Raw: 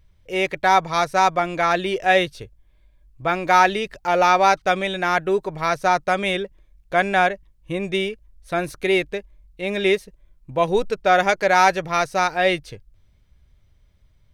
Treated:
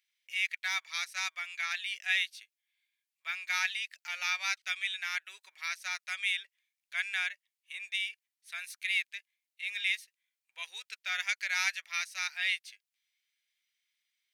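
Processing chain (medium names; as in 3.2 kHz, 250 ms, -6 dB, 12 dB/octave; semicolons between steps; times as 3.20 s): Chebyshev high-pass 2.1 kHz, order 3; trim -5 dB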